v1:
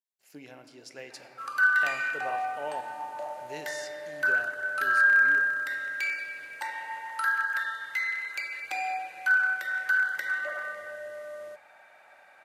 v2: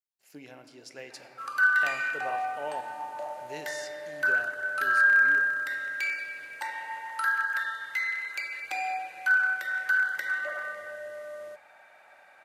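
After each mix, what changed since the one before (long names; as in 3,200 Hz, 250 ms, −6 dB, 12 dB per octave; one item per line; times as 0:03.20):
nothing changed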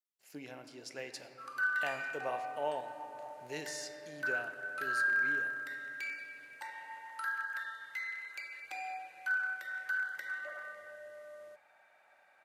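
background −10.0 dB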